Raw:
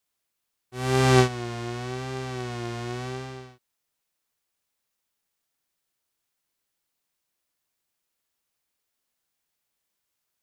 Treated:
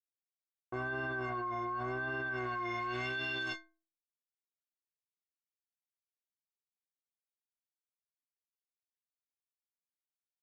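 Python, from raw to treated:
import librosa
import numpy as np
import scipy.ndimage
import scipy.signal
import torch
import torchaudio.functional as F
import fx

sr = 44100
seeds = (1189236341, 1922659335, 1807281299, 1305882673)

y = np.sign(x) * np.maximum(np.abs(x) - 10.0 ** (-53.0 / 20.0), 0.0)
y = fx.stiff_resonator(y, sr, f0_hz=320.0, decay_s=0.42, stiffness=0.03)
y = fx.filter_sweep_lowpass(y, sr, from_hz=1200.0, to_hz=6700.0, start_s=2.07, end_s=4.15, q=1.5)
y = fx.env_flatten(y, sr, amount_pct=100)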